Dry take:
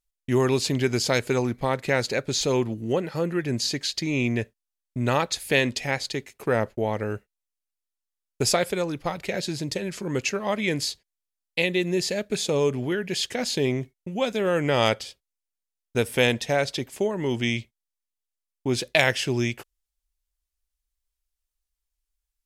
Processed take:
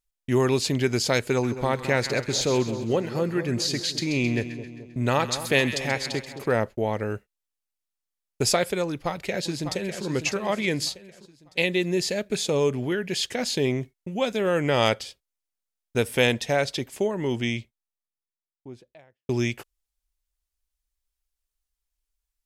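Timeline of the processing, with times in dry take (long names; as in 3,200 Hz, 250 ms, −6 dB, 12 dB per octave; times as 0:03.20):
0:01.30–0:06.52: echo with a time of its own for lows and highs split 1,100 Hz, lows 215 ms, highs 132 ms, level −11 dB
0:08.85–0:10.05: delay throw 600 ms, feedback 40%, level −9 dB
0:16.99–0:19.29: fade out and dull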